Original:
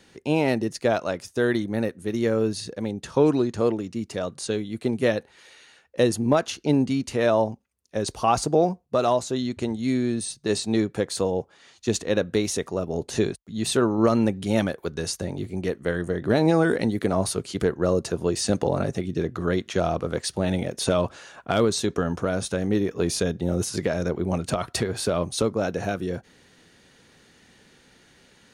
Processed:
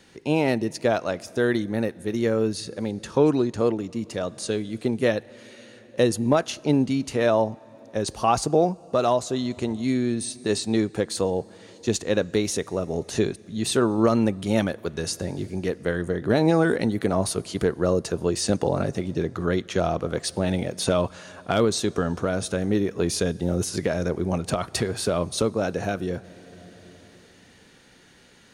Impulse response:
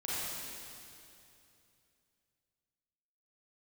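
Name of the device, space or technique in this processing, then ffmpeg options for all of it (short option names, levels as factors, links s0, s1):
ducked reverb: -filter_complex "[0:a]asplit=3[s0][s1][s2];[1:a]atrim=start_sample=2205[s3];[s1][s3]afir=irnorm=-1:irlink=0[s4];[s2]apad=whole_len=1258351[s5];[s4][s5]sidechaincompress=threshold=0.0251:ratio=16:attack=16:release=969,volume=0.237[s6];[s0][s6]amix=inputs=2:normalize=0"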